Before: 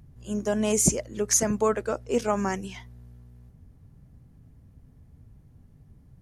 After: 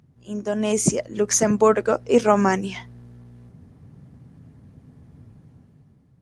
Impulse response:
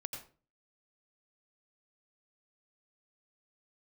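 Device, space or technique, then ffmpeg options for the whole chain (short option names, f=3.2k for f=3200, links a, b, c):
video call: -af "highpass=130,lowpass=7k,dynaudnorm=f=170:g=9:m=11dB" -ar 48000 -c:a libopus -b:a 32k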